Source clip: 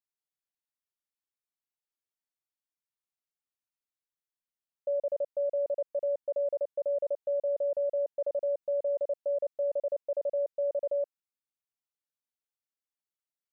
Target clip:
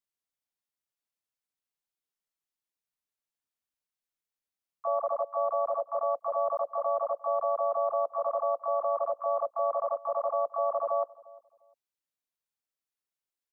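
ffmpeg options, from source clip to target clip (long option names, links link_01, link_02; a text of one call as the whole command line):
ffmpeg -i in.wav -filter_complex "[0:a]asplit=4[link_01][link_02][link_03][link_04];[link_02]asetrate=52444,aresample=44100,atempo=0.840896,volume=-1dB[link_05];[link_03]asetrate=66075,aresample=44100,atempo=0.66742,volume=-11dB[link_06];[link_04]asetrate=88200,aresample=44100,atempo=0.5,volume=-3dB[link_07];[link_01][link_05][link_06][link_07]amix=inputs=4:normalize=0,asplit=2[link_08][link_09];[link_09]adelay=350,lowpass=frequency=810:poles=1,volume=-20dB,asplit=2[link_10][link_11];[link_11]adelay=350,lowpass=frequency=810:poles=1,volume=0.31[link_12];[link_08][link_10][link_12]amix=inputs=3:normalize=0,volume=-2.5dB" out.wav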